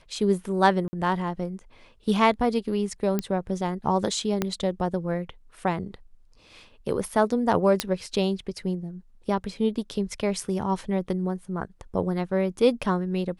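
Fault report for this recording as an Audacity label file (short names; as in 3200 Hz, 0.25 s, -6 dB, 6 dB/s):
0.880000	0.930000	gap 50 ms
3.190000	3.190000	pop -12 dBFS
4.420000	4.420000	pop -10 dBFS
7.800000	7.800000	pop -6 dBFS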